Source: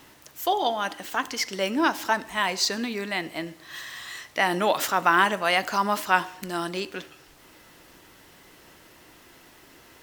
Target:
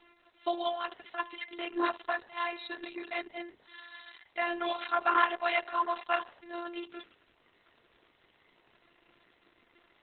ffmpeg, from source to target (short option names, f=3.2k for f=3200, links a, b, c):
-af "lowshelf=f=320:g=-5.5,afftfilt=real='hypot(re,im)*cos(PI*b)':imag='0':win_size=512:overlap=0.75,volume=-4dB" -ar 48000 -c:a libopus -b:a 6k